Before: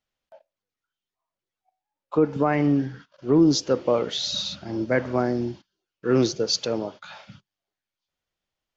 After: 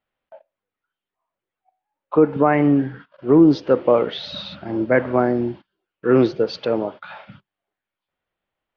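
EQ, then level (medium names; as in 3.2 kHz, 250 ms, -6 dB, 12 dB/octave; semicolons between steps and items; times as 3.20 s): low-pass 3.5 kHz 12 dB/octave; distance through air 290 m; bass shelf 200 Hz -8 dB; +8.0 dB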